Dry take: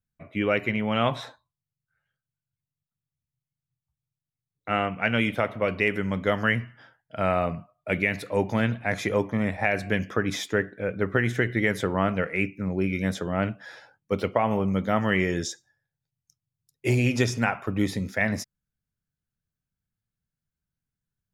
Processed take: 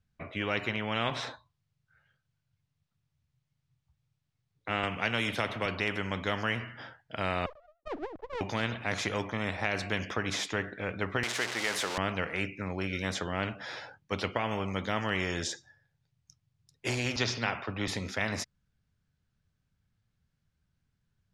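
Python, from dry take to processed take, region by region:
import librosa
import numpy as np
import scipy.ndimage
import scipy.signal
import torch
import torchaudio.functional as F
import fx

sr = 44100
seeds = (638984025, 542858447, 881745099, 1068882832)

y = fx.chain(x, sr, fx.high_shelf(hz=5800.0, db=9.5),
    fx.band_squash(depth_pct=40), at=(4.83, 5.66))
y = fx.chain(y, sr, fx.sine_speech(),
    fx.gaussian_blur(sigma=15.0),
    fx.running_max(window=17), at=(7.46, 8.41))
y = fx.chain(y, sr, fx.zero_step(step_db=-29.5),
    fx.highpass(hz=560.0, slope=12),
    fx.high_shelf(hz=8800.0, db=6.0), at=(11.23, 11.98))
y = fx.chain(y, sr, fx.high_shelf_res(hz=6300.0, db=-11.0, q=3.0),
    fx.band_widen(depth_pct=70), at=(17.16, 17.88))
y = scipy.signal.sosfilt(scipy.signal.butter(2, 5200.0, 'lowpass', fs=sr, output='sos'), y)
y = fx.peak_eq(y, sr, hz=84.0, db=5.0, octaves=0.77)
y = fx.spectral_comp(y, sr, ratio=2.0)
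y = F.gain(torch.from_numpy(y), -6.5).numpy()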